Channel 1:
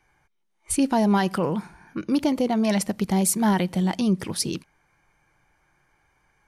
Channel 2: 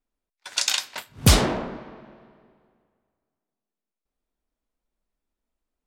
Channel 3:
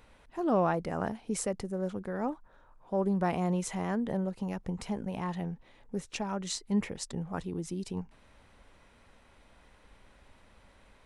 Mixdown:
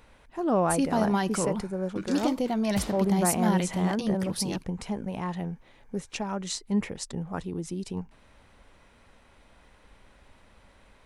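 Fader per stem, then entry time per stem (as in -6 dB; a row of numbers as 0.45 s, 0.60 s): -5.0 dB, -20.0 dB, +2.5 dB; 0.00 s, 1.50 s, 0.00 s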